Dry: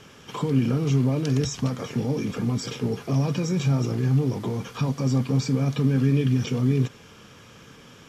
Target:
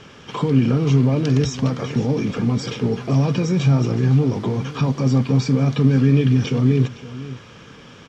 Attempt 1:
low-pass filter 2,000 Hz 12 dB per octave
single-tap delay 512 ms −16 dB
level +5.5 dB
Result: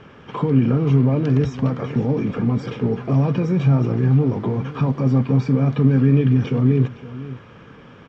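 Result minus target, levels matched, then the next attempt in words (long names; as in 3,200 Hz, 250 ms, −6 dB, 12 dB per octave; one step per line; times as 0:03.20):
4,000 Hz band −10.0 dB
low-pass filter 5,300 Hz 12 dB per octave
single-tap delay 512 ms −16 dB
level +5.5 dB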